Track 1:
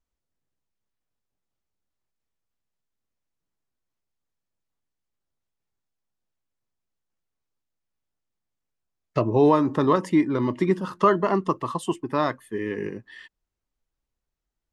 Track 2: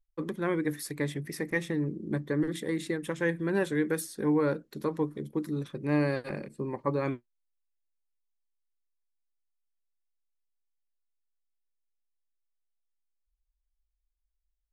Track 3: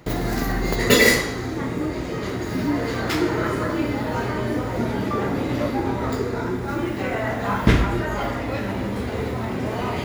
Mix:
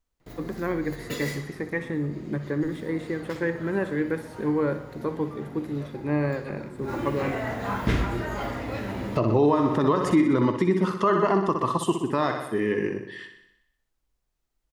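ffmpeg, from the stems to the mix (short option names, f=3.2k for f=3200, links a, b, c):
-filter_complex "[0:a]volume=3dB,asplit=3[a][b][c];[b]volume=-8.5dB[d];[1:a]acrossover=split=2600[e][f];[f]acompressor=threshold=-57dB:ratio=4:attack=1:release=60[g];[e][g]amix=inputs=2:normalize=0,adelay=200,volume=1.5dB,asplit=2[h][i];[i]volume=-12.5dB[j];[2:a]adelay=200,volume=-5.5dB,afade=t=in:st=6.75:d=0.22:silence=0.223872[k];[c]apad=whole_len=451584[l];[k][l]sidechaincompress=threshold=-32dB:ratio=8:attack=41:release=138[m];[d][j]amix=inputs=2:normalize=0,aecho=0:1:62|124|186|248|310|372|434|496|558|620:1|0.6|0.36|0.216|0.13|0.0778|0.0467|0.028|0.0168|0.0101[n];[a][h][m][n]amix=inputs=4:normalize=0,alimiter=limit=-11.5dB:level=0:latency=1:release=115"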